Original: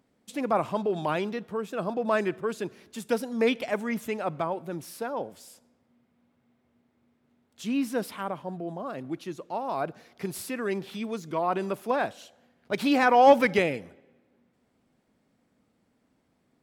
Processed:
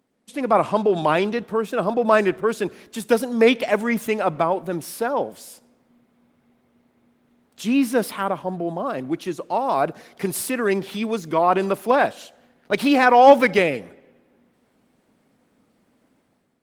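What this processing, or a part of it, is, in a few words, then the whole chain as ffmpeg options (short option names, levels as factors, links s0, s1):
video call: -filter_complex "[0:a]asplit=3[s0][s1][s2];[s0]afade=t=out:st=9.24:d=0.02[s3];[s1]equalizer=f=8800:t=o:w=0.77:g=3,afade=t=in:st=9.24:d=0.02,afade=t=out:st=10.47:d=0.02[s4];[s2]afade=t=in:st=10.47:d=0.02[s5];[s3][s4][s5]amix=inputs=3:normalize=0,highpass=f=170:p=1,dynaudnorm=f=120:g=7:m=2.82,volume=1.12" -ar 48000 -c:a libopus -b:a 24k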